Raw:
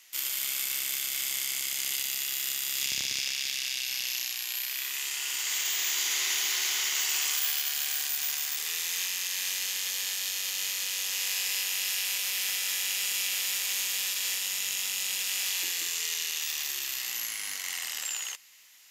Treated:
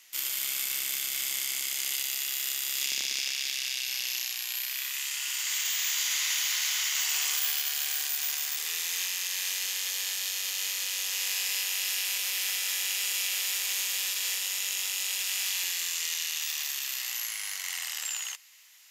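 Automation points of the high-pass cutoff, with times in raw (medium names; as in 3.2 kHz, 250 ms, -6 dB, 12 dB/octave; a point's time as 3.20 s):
1.11 s 98 Hz
1.98 s 290 Hz
4.14 s 290 Hz
4.97 s 960 Hz
6.91 s 960 Hz
7.35 s 310 Hz
14.85 s 310 Hz
15.51 s 650 Hz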